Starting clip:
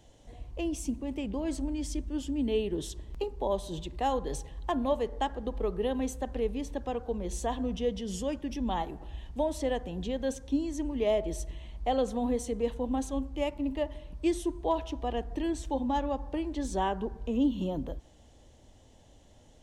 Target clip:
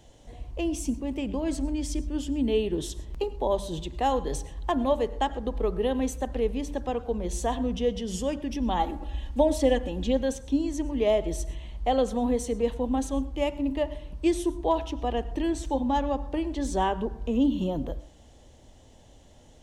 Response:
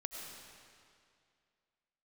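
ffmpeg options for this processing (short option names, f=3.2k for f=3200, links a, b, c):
-filter_complex "[0:a]asettb=1/sr,asplit=3[a][b][c];[a]atrim=end=8.794[d];[b]atrim=start=8.79:end=10.21,asetpts=PTS-STARTPTS,afade=t=in:d=0.004:c=qsin,afade=t=out:st=1.416:d=0.004:c=qsin,aecho=1:1:3.6:0.87,atrim=end_sample=62622[e];[c]atrim=start=10.206[f];[d][e]acrossfade=d=0.004:c1=hsin:c2=qsin[g];[g][f]acrossfade=d=0.004:c1=qsin:c2=hsin,bandreject=f=98.64:t=h:w=4,bandreject=f=197.28:t=h:w=4,bandreject=f=295.92:t=h:w=4,asplit=2[h][i];[1:a]atrim=start_sample=2205,afade=t=out:st=0.18:d=0.01,atrim=end_sample=8379[j];[i][j]afir=irnorm=-1:irlink=0,volume=-6dB[k];[h][k]amix=inputs=2:normalize=0,volume=1.5dB"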